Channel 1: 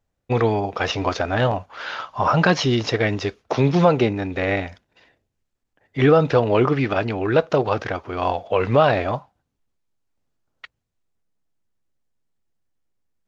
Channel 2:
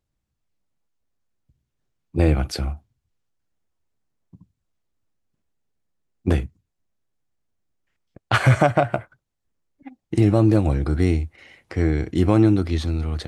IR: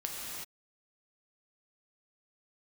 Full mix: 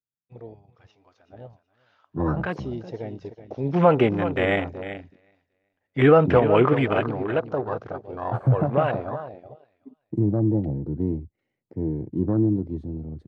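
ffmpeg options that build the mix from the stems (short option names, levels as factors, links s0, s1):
-filter_complex "[0:a]lowshelf=f=87:g=-4.5,afade=t=in:st=1.79:d=0.7:silence=0.354813,afade=t=in:st=3.59:d=0.31:silence=0.266073,afade=t=out:st=6.78:d=0.62:silence=0.421697,asplit=2[s0][s1];[s1]volume=0.282[s2];[1:a]highpass=f=110:w=0.5412,highpass=f=110:w=1.3066,tiltshelf=f=740:g=10,volume=0.266[s3];[s2]aecho=0:1:376|752|1128|1504:1|0.24|0.0576|0.0138[s4];[s0][s3][s4]amix=inputs=3:normalize=0,afwtdn=0.0224"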